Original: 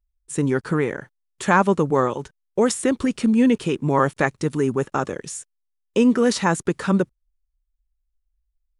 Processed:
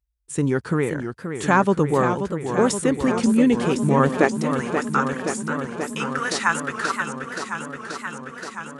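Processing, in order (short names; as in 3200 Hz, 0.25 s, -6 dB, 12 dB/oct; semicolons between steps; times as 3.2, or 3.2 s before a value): high-pass sweep 63 Hz -> 1300 Hz, 3.84–4.54; warbling echo 0.528 s, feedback 78%, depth 162 cents, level -8 dB; gain -1 dB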